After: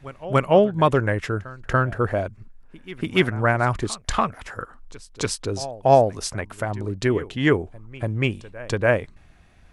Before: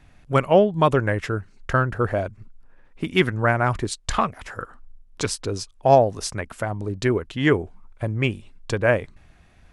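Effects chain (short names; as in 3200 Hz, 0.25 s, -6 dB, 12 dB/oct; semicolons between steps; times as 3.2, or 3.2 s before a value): reverse echo 0.287 s -18.5 dB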